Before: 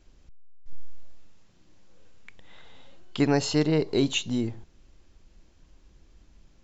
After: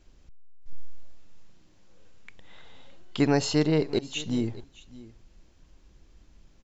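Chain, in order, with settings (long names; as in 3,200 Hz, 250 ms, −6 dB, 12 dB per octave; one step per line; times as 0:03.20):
0:03.22–0:04.20: volume swells 357 ms
single-tap delay 616 ms −19.5 dB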